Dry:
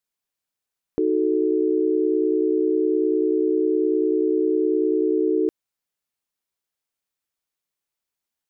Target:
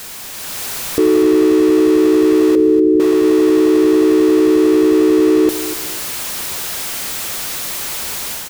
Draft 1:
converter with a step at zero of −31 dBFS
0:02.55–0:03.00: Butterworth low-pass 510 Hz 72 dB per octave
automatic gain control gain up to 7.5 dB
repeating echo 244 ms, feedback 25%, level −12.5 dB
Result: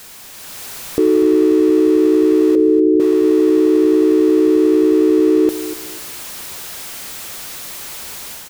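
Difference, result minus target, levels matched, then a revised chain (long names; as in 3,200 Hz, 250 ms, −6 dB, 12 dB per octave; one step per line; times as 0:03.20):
converter with a step at zero: distortion −6 dB
converter with a step at zero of −24 dBFS
0:02.55–0:03.00: Butterworth low-pass 510 Hz 72 dB per octave
automatic gain control gain up to 7.5 dB
repeating echo 244 ms, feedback 25%, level −12.5 dB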